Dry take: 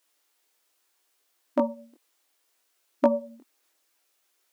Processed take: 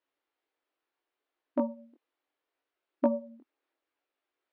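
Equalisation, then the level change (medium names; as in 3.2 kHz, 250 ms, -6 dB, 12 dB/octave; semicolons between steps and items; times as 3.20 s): distance through air 370 m; bass shelf 390 Hz +6.5 dB; -7.0 dB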